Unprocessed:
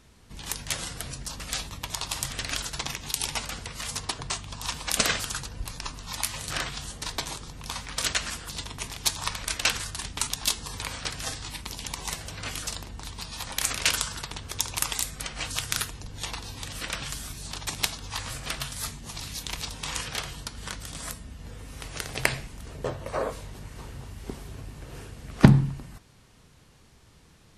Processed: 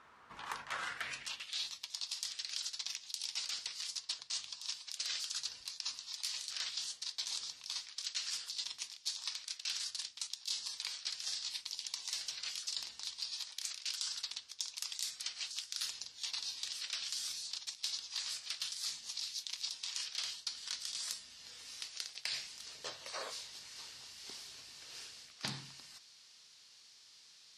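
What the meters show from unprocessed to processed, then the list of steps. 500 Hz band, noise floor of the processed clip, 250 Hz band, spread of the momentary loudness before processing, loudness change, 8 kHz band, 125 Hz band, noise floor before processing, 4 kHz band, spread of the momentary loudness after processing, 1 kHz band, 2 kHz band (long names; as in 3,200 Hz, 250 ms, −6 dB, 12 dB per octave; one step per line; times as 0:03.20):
below −20 dB, −61 dBFS, below −30 dB, 15 LU, −10.0 dB, −10.0 dB, below −30 dB, −56 dBFS, −5.5 dB, 10 LU, −16.0 dB, −14.0 dB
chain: band-pass filter sweep 1,200 Hz → 4,800 Hz, 0:00.70–0:01.73
reversed playback
downward compressor 16 to 1, threshold −45 dBFS, peak gain reduction 22.5 dB
reversed playback
level +8.5 dB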